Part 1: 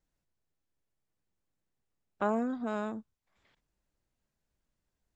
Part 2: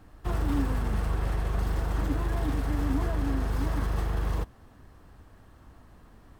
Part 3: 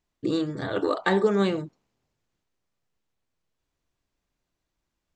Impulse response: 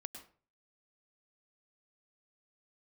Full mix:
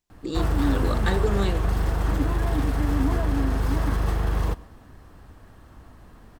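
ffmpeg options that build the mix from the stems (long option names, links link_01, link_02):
-filter_complex "[1:a]adelay=100,volume=3dB,asplit=2[link_01][link_02];[link_02]volume=-7.5dB[link_03];[2:a]highshelf=frequency=4200:gain=10,volume=-5dB[link_04];[3:a]atrim=start_sample=2205[link_05];[link_03][link_05]afir=irnorm=-1:irlink=0[link_06];[link_01][link_04][link_06]amix=inputs=3:normalize=0"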